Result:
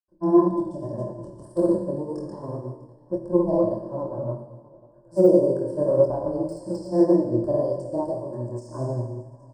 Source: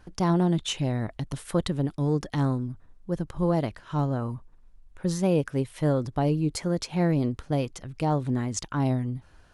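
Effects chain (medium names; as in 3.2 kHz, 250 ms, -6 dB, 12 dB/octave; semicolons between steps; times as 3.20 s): Butterworth band-stop 2.5 kHz, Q 0.52; peaking EQ 510 Hz +12.5 dB 2 oct; multi-head delay 210 ms, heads first and third, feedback 43%, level -17 dB; granulator 100 ms, grains 20 per s, pitch spread up and down by 0 st; rippled EQ curve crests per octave 1.3, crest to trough 15 dB; Schroeder reverb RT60 1.4 s, DRR 2.5 dB; chorus 1.8 Hz, depth 4.8 ms; de-esser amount 85%; upward expansion 1.5:1, over -42 dBFS; trim -2 dB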